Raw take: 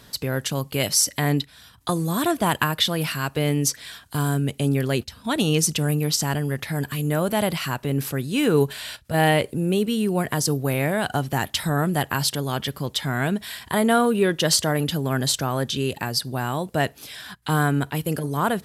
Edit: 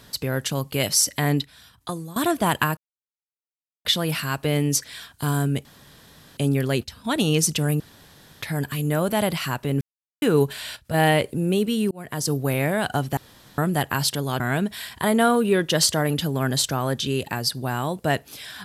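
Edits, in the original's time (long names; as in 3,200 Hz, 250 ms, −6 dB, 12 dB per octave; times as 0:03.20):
0:01.23–0:02.16: fade out equal-power, to −17.5 dB
0:02.77: splice in silence 1.08 s
0:04.57: splice in room tone 0.72 s
0:06.00–0:06.62: fill with room tone
0:08.01–0:08.42: silence
0:10.11–0:10.56: fade in linear
0:11.37–0:11.78: fill with room tone
0:12.60–0:13.10: remove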